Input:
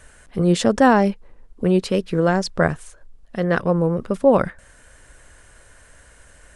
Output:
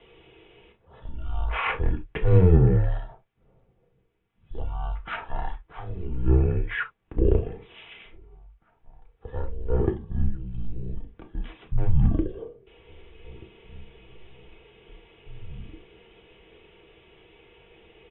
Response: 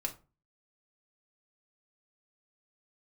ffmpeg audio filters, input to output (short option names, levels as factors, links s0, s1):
-filter_complex "[0:a]asplit=2[s0][s1];[s1]adelay=1283,volume=0.112,highshelf=f=4000:g=-28.9[s2];[s0][s2]amix=inputs=2:normalize=0,asetrate=15964,aresample=44100,asoftclip=type=hard:threshold=0.501[s3];[1:a]atrim=start_sample=2205,atrim=end_sample=3528[s4];[s3][s4]afir=irnorm=-1:irlink=0,highpass=f=160:t=q:w=0.5412,highpass=f=160:t=q:w=1.307,lowpass=f=3400:t=q:w=0.5176,lowpass=f=3400:t=q:w=0.7071,lowpass=f=3400:t=q:w=1.932,afreqshift=-180,volume=0.75"